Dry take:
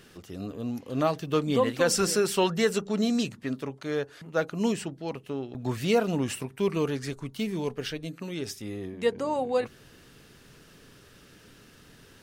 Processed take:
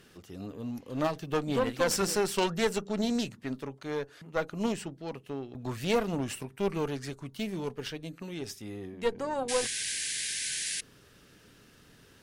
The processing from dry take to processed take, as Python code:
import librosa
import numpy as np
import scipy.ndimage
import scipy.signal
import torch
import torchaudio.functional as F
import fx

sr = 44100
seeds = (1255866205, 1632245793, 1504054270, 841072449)

y = fx.cheby_harmonics(x, sr, harmonics=(2, 4, 6), levels_db=(-11, -9, -26), full_scale_db=-11.5)
y = fx.spec_paint(y, sr, seeds[0], shape='noise', start_s=9.48, length_s=1.33, low_hz=1500.0, high_hz=11000.0, level_db=-30.0)
y = y * 10.0 ** (-4.0 / 20.0)